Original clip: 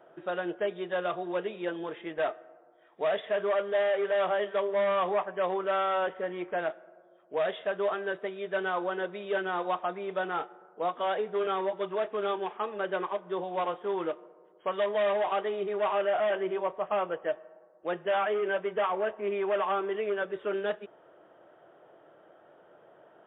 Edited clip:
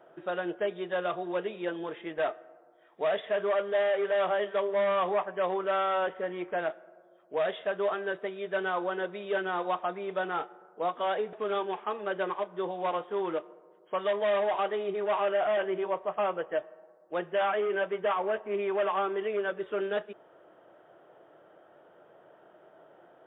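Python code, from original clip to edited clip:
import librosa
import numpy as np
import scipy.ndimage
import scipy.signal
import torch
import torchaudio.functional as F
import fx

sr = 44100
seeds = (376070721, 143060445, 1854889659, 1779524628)

y = fx.edit(x, sr, fx.cut(start_s=11.33, length_s=0.73), tone=tone)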